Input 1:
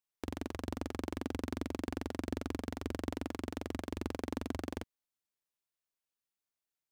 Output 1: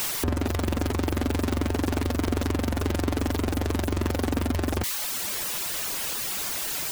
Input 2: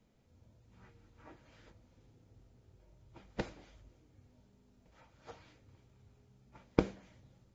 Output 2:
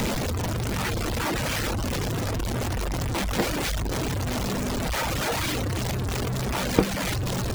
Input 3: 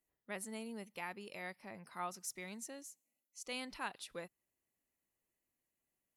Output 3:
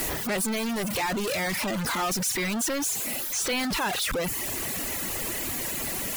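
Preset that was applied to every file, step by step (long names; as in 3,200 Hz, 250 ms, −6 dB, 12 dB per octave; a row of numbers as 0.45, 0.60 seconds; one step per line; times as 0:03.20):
converter with a step at zero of −25 dBFS
reverb reduction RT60 0.74 s
loudness normalisation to −27 LKFS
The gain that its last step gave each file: +5.5, +6.0, +3.5 decibels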